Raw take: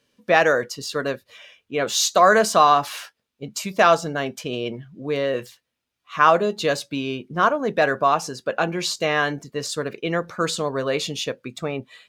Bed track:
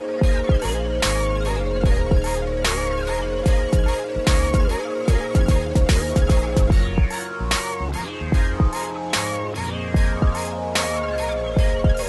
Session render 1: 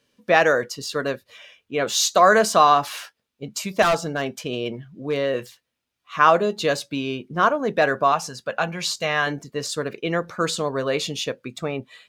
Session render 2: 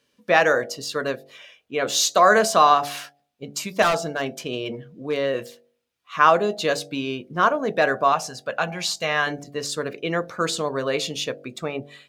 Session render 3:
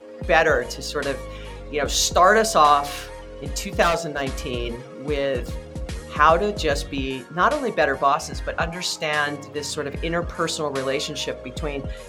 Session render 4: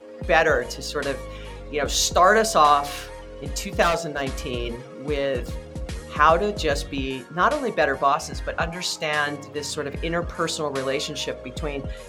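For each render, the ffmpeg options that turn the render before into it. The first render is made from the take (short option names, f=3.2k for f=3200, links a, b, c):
-filter_complex "[0:a]asettb=1/sr,asplit=3[a][b][c];[a]atrim=end=3.824[d];[b]atrim=start=3.82:end=5.16,asetpts=PTS-STARTPTS,afade=t=in:d=0.004:c=qsin,afade=t=out:st=1.336:d=0.004:c=qsin,asoftclip=type=hard:threshold=-15.5dB[e];[c]atrim=start=5.156[f];[d][e]acrossfade=d=0.004:c1=hsin:c2=qsin[g];[g][f]acrossfade=d=0.004:c1=qsin:c2=hsin,asettb=1/sr,asplit=3[h][i][j];[h]atrim=end=8.124[k];[i]atrim=start=8.12:end=9.27,asetpts=PTS-STARTPTS,afade=t=in:d=0.004:c=qsin,afade=t=out:st=1.146:d=0.004:c=qsin,equalizer=f=350:t=o:w=0.77:g=-11.5[l];[j]atrim=start=9.266[m];[k][l]acrossfade=d=0.004:c1=hsin:c2=qsin[n];[n][m]acrossfade=d=0.004:c1=qsin:c2=hsin"
-af "lowshelf=f=130:g=-4.5,bandreject=f=47.81:t=h:w=4,bandreject=f=95.62:t=h:w=4,bandreject=f=143.43:t=h:w=4,bandreject=f=191.24:t=h:w=4,bandreject=f=239.05:t=h:w=4,bandreject=f=286.86:t=h:w=4,bandreject=f=334.67:t=h:w=4,bandreject=f=382.48:t=h:w=4,bandreject=f=430.29:t=h:w=4,bandreject=f=478.1:t=h:w=4,bandreject=f=525.91:t=h:w=4,bandreject=f=573.72:t=h:w=4,bandreject=f=621.53:t=h:w=4,bandreject=f=669.34:t=h:w=4,bandreject=f=717.15:t=h:w=4,bandreject=f=764.96:t=h:w=4,bandreject=f=812.77:t=h:w=4"
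-filter_complex "[1:a]volume=-14.5dB[a];[0:a][a]amix=inputs=2:normalize=0"
-af "volume=-1dB"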